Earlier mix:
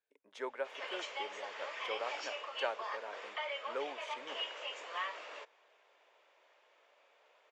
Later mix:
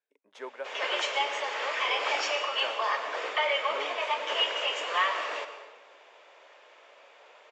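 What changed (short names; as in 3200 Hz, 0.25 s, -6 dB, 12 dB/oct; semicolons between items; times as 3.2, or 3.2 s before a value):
background +8.5 dB; reverb: on, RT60 1.2 s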